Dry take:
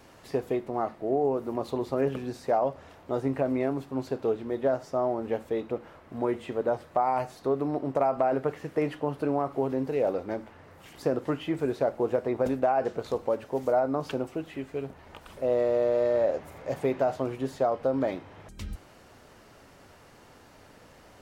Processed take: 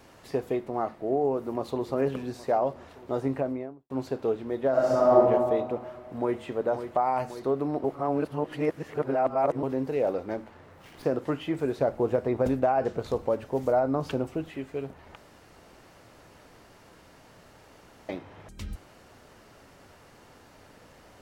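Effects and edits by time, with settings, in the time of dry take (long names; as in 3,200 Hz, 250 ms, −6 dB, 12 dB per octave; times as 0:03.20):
0:01.41–0:01.90: delay throw 410 ms, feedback 70%, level −14.5 dB
0:03.26–0:03.90: fade out and dull
0:04.71–0:05.16: thrown reverb, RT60 1.8 s, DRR −8.5 dB
0:05.75–0:06.42: delay throw 540 ms, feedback 65%, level −9.5 dB
0:07.84–0:09.63: reverse
0:10.37–0:11.05: windowed peak hold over 5 samples
0:11.78–0:14.50: low-shelf EQ 150 Hz +9.5 dB
0:15.16–0:18.09: fill with room tone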